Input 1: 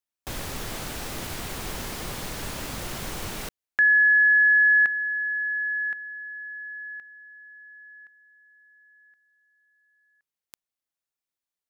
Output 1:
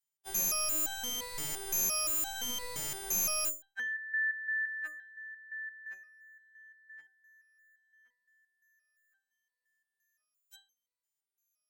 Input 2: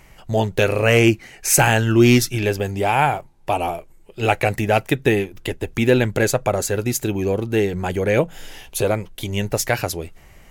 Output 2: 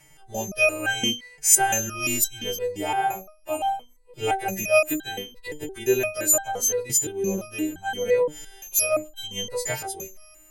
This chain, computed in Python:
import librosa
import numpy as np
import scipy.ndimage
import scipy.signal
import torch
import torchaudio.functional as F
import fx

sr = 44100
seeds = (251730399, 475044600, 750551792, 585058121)

y = fx.freq_snap(x, sr, grid_st=2)
y = fx.resonator_held(y, sr, hz=5.8, low_hz=150.0, high_hz=790.0)
y = y * librosa.db_to_amplitude(7.0)